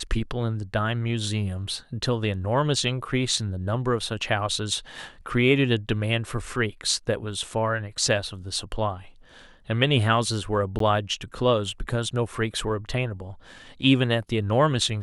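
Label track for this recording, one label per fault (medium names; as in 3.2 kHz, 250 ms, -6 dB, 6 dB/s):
10.790000	10.800000	dropout 13 ms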